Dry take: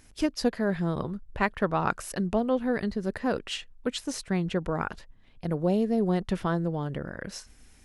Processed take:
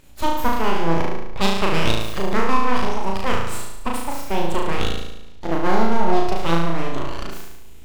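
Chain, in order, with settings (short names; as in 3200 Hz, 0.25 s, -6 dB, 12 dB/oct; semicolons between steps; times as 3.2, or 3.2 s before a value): high shelf 5400 Hz -7 dB; full-wave rectifier; on a send: flutter echo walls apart 6.2 m, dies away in 0.92 s; on the sum: formant shift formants +5 st; gain +5 dB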